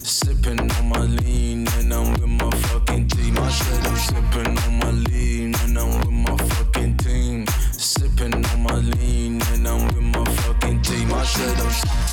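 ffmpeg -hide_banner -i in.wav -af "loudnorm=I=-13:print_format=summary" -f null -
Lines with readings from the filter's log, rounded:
Input Integrated:    -20.9 LUFS
Input True Peak:     -10.5 dBTP
Input LRA:             0.3 LU
Input Threshold:     -30.9 LUFS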